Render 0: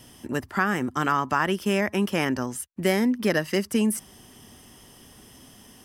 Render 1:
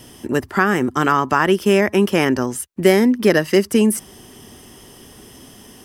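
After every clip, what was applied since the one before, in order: bell 390 Hz +5.5 dB 0.62 oct; gain +6.5 dB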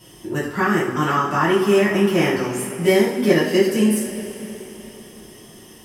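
two-slope reverb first 0.47 s, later 3.9 s, from -16 dB, DRR -8.5 dB; gain -11 dB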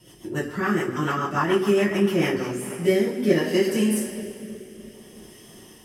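rotary speaker horn 7 Hz, later 0.6 Hz, at 2.07; gain -2.5 dB

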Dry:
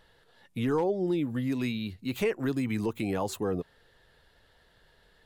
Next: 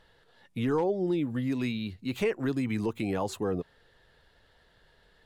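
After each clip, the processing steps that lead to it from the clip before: high shelf 12000 Hz -11.5 dB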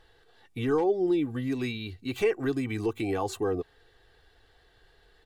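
comb 2.6 ms, depth 62%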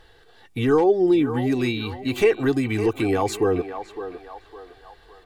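narrowing echo 0.558 s, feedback 50%, band-pass 980 Hz, level -8 dB; gain +7.5 dB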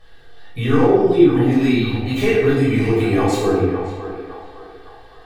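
reverb RT60 1.1 s, pre-delay 11 ms, DRR -7 dB; gain -5.5 dB

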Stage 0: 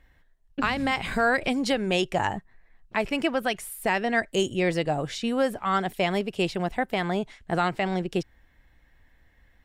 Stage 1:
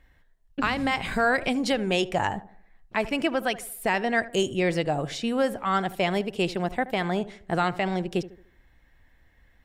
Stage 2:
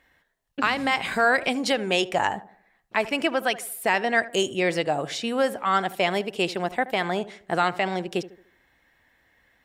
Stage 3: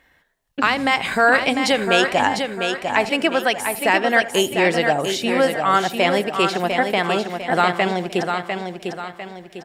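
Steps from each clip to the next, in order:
tape echo 76 ms, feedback 48%, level -14 dB, low-pass 1200 Hz
HPF 390 Hz 6 dB/oct; gain +3.5 dB
feedback echo 0.7 s, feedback 41%, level -6 dB; gain +5 dB

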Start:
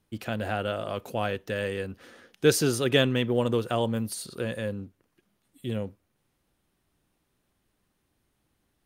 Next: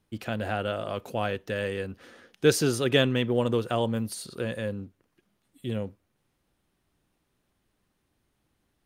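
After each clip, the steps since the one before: high shelf 10000 Hz -5 dB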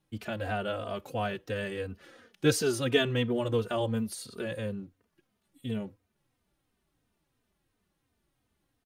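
endless flanger 3.1 ms -2.9 Hz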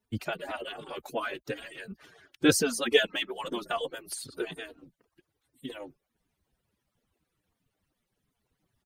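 median-filter separation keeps percussive; gain +5 dB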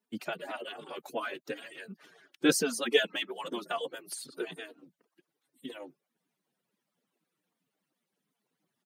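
steep high-pass 160 Hz 36 dB/oct; gain -2.5 dB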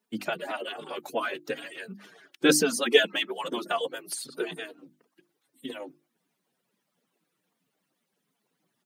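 notches 50/100/150/200/250/300/350 Hz; gain +5.5 dB

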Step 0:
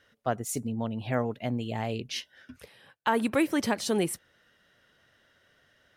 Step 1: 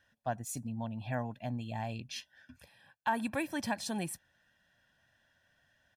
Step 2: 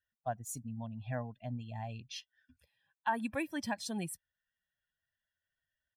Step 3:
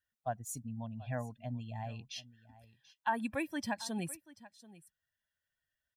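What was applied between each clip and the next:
comb 1.2 ms, depth 74%; gain -8.5 dB
per-bin expansion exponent 1.5
echo 0.735 s -19 dB

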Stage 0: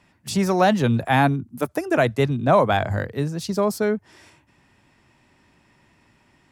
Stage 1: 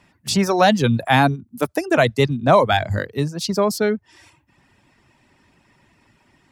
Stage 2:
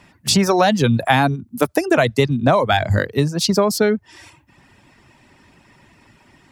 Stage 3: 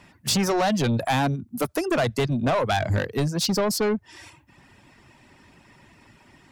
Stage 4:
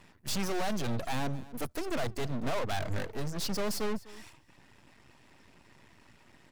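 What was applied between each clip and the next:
reverb removal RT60 0.69 s; dynamic EQ 4400 Hz, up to +6 dB, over -44 dBFS, Q 0.91; gain +3 dB
compressor 6:1, threshold -18 dBFS, peak gain reduction 9.5 dB; gain +6.5 dB
soft clip -16 dBFS, distortion -9 dB; gain -2 dB
one diode to ground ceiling -25.5 dBFS; half-wave rectifier; echo 0.251 s -19.5 dB; gain -2 dB

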